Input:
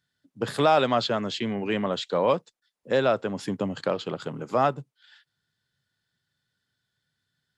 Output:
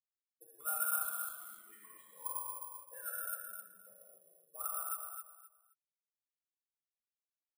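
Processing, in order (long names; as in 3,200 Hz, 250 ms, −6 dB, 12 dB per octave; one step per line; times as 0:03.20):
spectral dynamics exaggerated over time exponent 3
low-pass filter 7,900 Hz
high-shelf EQ 3,400 Hz +9.5 dB
notch filter 870 Hz, Q 12
envelope filter 510–1,400 Hz, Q 18, up, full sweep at −26.5 dBFS
repeating echo 260 ms, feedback 24%, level −6 dB
reverb whose tail is shaped and stops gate 290 ms flat, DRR −6 dB
bad sample-rate conversion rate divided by 4×, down none, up zero stuff
level −8 dB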